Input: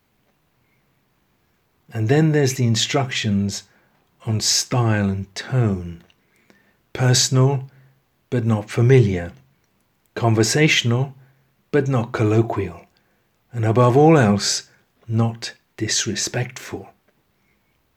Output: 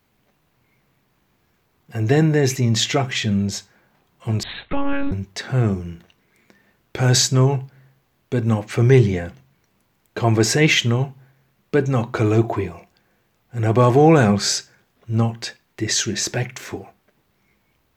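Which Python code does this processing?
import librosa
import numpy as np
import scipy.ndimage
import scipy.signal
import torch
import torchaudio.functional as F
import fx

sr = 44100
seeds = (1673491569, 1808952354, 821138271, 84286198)

y = fx.lpc_monotone(x, sr, seeds[0], pitch_hz=280.0, order=10, at=(4.43, 5.12))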